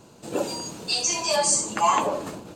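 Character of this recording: noise floor -51 dBFS; spectral tilt -1.0 dB/oct

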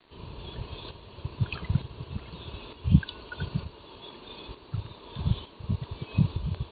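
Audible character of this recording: tremolo saw up 1.1 Hz, depth 55%; a quantiser's noise floor 10-bit, dither none; AC-3

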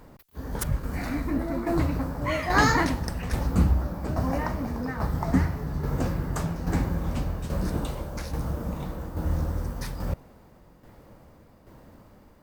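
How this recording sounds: tremolo saw down 1.2 Hz, depth 55%; Opus

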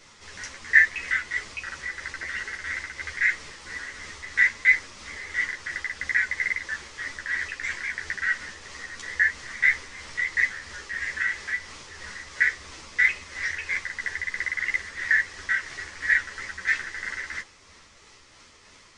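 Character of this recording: tremolo triangle 3 Hz, depth 35%; a shimmering, thickened sound

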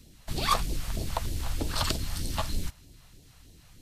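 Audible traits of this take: phasing stages 2, 3.2 Hz, lowest notch 300–1200 Hz

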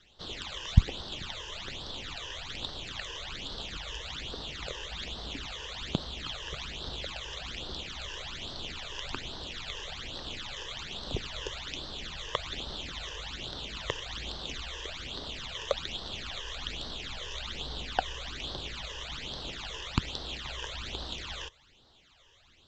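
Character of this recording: phasing stages 12, 1.2 Hz, lowest notch 220–2400 Hz; µ-law

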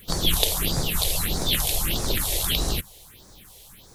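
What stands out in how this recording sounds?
a quantiser's noise floor 10-bit, dither triangular; phasing stages 4, 1.6 Hz, lowest notch 210–2900 Hz

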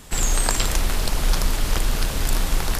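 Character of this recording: noise floor -27 dBFS; spectral tilt -3.5 dB/oct

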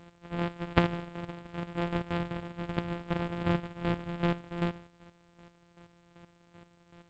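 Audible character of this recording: a buzz of ramps at a fixed pitch in blocks of 256 samples; chopped level 2.6 Hz, depth 65%, duty 25%; G.722

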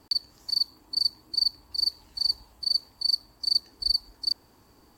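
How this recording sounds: noise floor -60 dBFS; spectral tilt -1.0 dB/oct

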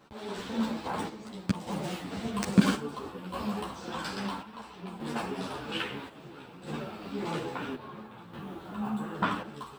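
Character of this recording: chopped level 0.6 Hz, depth 60%, duty 65%; a shimmering, thickened sound

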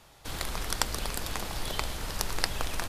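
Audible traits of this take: noise floor -56 dBFS; spectral tilt -3.0 dB/oct

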